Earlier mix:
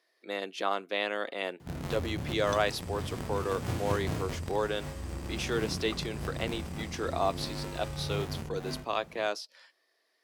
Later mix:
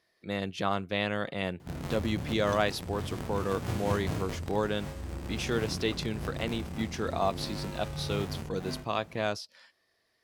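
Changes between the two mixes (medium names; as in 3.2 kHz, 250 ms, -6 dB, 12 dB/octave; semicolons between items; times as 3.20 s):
speech: remove high-pass 300 Hz 24 dB/octave; second sound -6.5 dB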